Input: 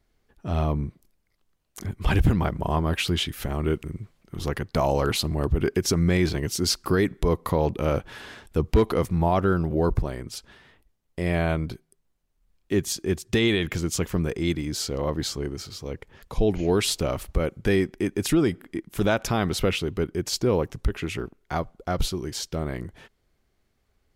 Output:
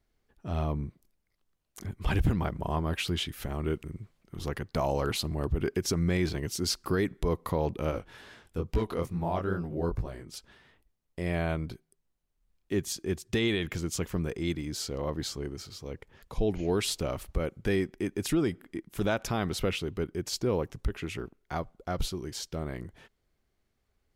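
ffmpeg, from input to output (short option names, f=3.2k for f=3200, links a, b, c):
-filter_complex "[0:a]asettb=1/sr,asplit=3[a][b][c];[a]atrim=end=7.914[d];[b]atrim=start=7.91:end=10.34,asetpts=PTS-STARTPTS,afade=t=in:d=0.004:c=qsin,afade=t=out:st=2.426:d=0.004:c=qsin,flanger=delay=16.5:depth=7.6:speed=2.3[e];[c]atrim=start=10.336[f];[d][e]acrossfade=d=0.004:c1=hsin:c2=qsin[g];[g][f]acrossfade=d=0.004:c1=qsin:c2=hsin,volume=-6dB"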